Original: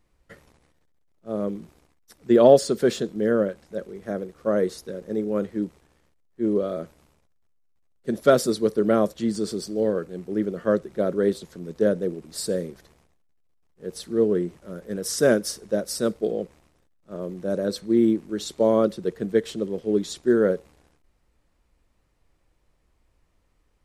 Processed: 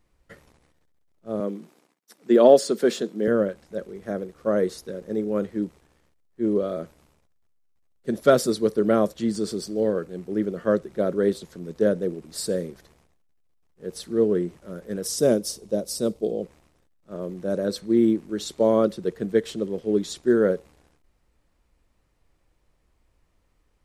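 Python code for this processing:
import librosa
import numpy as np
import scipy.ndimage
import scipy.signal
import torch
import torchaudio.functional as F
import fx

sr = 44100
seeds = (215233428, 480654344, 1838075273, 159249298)

y = fx.highpass(x, sr, hz=190.0, slope=24, at=(1.4, 3.28))
y = fx.peak_eq(y, sr, hz=1600.0, db=-12.5, octaves=1.0, at=(15.07, 16.43))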